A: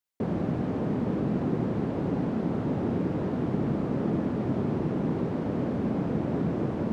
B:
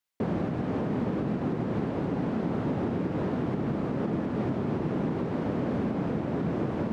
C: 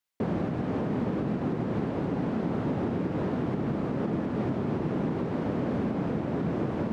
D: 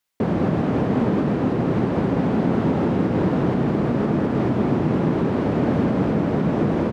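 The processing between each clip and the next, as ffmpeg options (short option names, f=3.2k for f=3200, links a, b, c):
-af "alimiter=limit=-20.5dB:level=0:latency=1:release=137,equalizer=f=2k:t=o:w=3:g=4"
-af anull
-af "aecho=1:1:213:0.631,volume=7.5dB"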